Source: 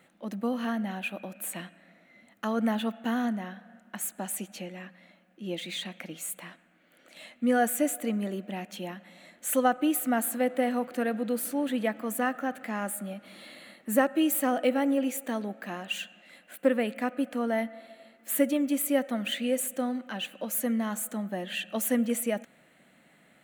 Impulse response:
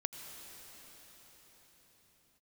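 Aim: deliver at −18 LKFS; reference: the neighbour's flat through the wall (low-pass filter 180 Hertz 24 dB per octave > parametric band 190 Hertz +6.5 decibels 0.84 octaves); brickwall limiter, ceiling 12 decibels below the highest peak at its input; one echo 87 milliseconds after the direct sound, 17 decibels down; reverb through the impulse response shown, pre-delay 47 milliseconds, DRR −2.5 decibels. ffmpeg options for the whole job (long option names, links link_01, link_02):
-filter_complex "[0:a]alimiter=limit=-21.5dB:level=0:latency=1,aecho=1:1:87:0.141,asplit=2[link_01][link_02];[1:a]atrim=start_sample=2205,adelay=47[link_03];[link_02][link_03]afir=irnorm=-1:irlink=0,volume=2dB[link_04];[link_01][link_04]amix=inputs=2:normalize=0,lowpass=frequency=180:width=0.5412,lowpass=frequency=180:width=1.3066,equalizer=frequency=190:width_type=o:width=0.84:gain=6.5,volume=18.5dB"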